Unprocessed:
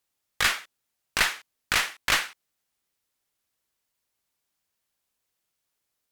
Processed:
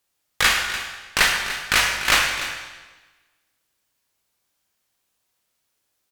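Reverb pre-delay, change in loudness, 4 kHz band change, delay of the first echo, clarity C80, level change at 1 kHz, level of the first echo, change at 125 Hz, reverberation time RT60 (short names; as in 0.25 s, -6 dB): 19 ms, +5.5 dB, +7.0 dB, 0.294 s, 5.0 dB, +7.0 dB, -13.0 dB, +6.5 dB, 1.3 s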